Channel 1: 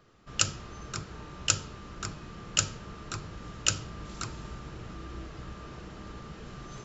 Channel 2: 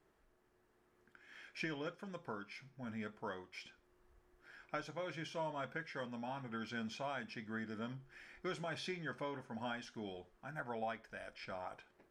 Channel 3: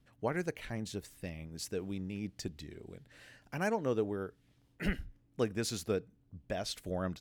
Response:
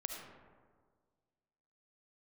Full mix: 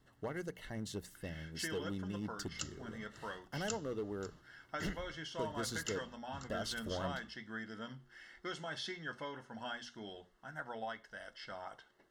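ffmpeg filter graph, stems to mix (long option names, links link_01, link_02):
-filter_complex "[0:a]adelay=2200,volume=-17dB[link_01];[1:a]equalizer=frequency=3700:width=0.39:gain=7.5,volume=-3dB[link_02];[2:a]alimiter=level_in=2.5dB:limit=-24dB:level=0:latency=1:release=403,volume=-2.5dB,volume=32dB,asoftclip=hard,volume=-32dB,volume=-1.5dB,asplit=2[link_03][link_04];[link_04]apad=whole_len=399086[link_05];[link_01][link_05]sidechaingate=range=-33dB:threshold=-58dB:ratio=16:detection=peak[link_06];[link_06][link_02][link_03]amix=inputs=3:normalize=0,asuperstop=centerf=2400:order=20:qfactor=6.3,bandreject=frequency=60:width_type=h:width=6,bandreject=frequency=120:width_type=h:width=6,bandreject=frequency=180:width_type=h:width=6,bandreject=frequency=240:width_type=h:width=6"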